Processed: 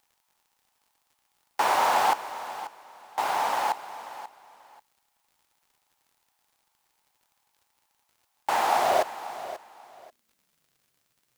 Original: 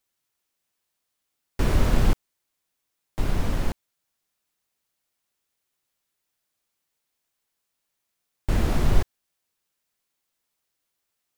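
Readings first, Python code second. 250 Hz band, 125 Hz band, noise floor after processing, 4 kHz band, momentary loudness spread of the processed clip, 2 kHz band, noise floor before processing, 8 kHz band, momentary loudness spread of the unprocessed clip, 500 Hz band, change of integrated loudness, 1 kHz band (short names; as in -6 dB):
-14.5 dB, under -25 dB, -75 dBFS, +4.5 dB, 19 LU, +6.5 dB, -80 dBFS, +4.5 dB, 16 LU, +4.5 dB, 0.0 dB, +15.0 dB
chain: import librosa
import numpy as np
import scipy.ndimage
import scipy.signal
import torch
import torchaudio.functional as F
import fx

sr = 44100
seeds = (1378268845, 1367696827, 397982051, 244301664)

y = fx.filter_sweep_highpass(x, sr, from_hz=840.0, to_hz=120.0, start_s=8.71, end_s=10.88, q=5.7)
y = fx.dmg_crackle(y, sr, seeds[0], per_s=82.0, level_db=-57.0)
y = fx.echo_feedback(y, sr, ms=537, feedback_pct=22, wet_db=-14.0)
y = y * 10.0 ** (4.0 / 20.0)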